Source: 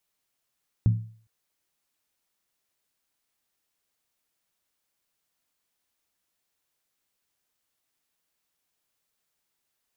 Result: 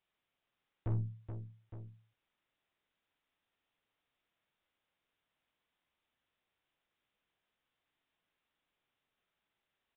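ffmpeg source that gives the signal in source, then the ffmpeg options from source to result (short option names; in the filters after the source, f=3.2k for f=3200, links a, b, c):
-f lavfi -i "aevalsrc='0.2*pow(10,-3*t/0.47)*sin(2*PI*111*t)+0.0631*pow(10,-3*t/0.372)*sin(2*PI*176.9*t)+0.02*pow(10,-3*t/0.322)*sin(2*PI*237.1*t)+0.00631*pow(10,-3*t/0.31)*sin(2*PI*254.9*t)+0.002*pow(10,-3*t/0.289)*sin(2*PI*294.5*t)':d=0.41:s=44100"
-filter_complex "[0:a]aeval=exprs='(tanh(44.7*val(0)+0.45)-tanh(0.45))/44.7':c=same,asplit=2[a][b];[b]aecho=0:1:46|426|863:0.422|0.398|0.237[c];[a][c]amix=inputs=2:normalize=0,aresample=8000,aresample=44100"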